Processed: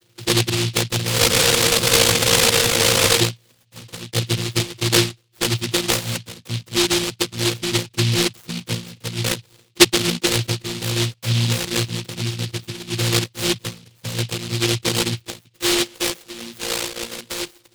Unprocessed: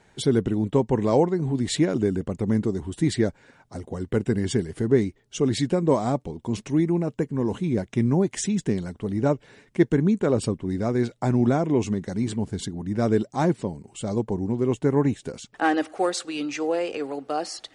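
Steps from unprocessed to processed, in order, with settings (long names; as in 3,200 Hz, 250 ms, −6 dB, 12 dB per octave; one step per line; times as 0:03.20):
channel vocoder with a chord as carrier bare fifth, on A#2
high-shelf EQ 4,300 Hz −10 dB
phaser with its sweep stopped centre 730 Hz, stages 6
frozen spectrum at 0:01.21, 1.98 s
short delay modulated by noise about 3,400 Hz, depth 0.42 ms
level +8 dB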